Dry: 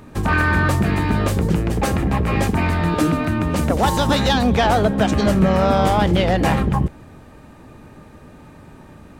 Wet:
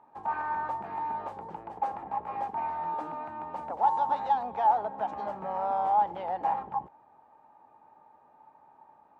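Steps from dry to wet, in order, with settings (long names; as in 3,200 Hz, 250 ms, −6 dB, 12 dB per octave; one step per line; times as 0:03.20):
resonant band-pass 860 Hz, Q 8.7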